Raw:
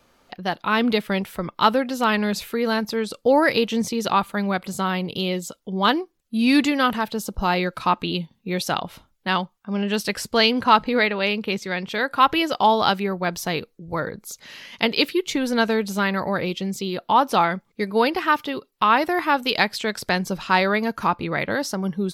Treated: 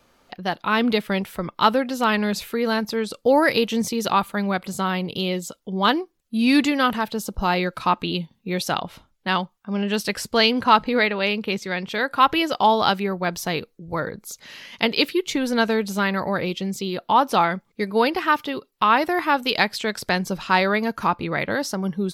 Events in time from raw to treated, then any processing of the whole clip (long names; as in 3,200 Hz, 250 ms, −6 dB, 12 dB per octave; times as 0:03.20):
0:03.25–0:04.29: high-shelf EQ 9,800 Hz +6.5 dB
0:08.82–0:09.28: high-shelf EQ 11,000 Hz −7.5 dB